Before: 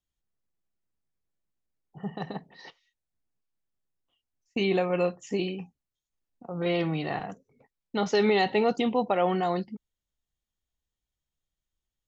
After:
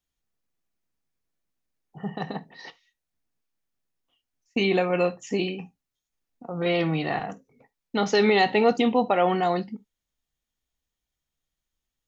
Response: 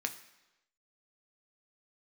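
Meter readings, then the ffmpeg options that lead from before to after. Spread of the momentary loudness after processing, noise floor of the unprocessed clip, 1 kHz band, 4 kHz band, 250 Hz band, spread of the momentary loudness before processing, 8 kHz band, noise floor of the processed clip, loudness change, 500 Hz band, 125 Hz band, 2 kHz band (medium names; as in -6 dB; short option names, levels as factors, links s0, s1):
17 LU, under -85 dBFS, +4.5 dB, +4.5 dB, +3.0 dB, 17 LU, no reading, under -85 dBFS, +3.5 dB, +3.0 dB, +2.5 dB, +5.5 dB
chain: -filter_complex "[0:a]asplit=2[s0][s1];[1:a]atrim=start_sample=2205,atrim=end_sample=3528[s2];[s1][s2]afir=irnorm=-1:irlink=0,volume=0.596[s3];[s0][s3]amix=inputs=2:normalize=0"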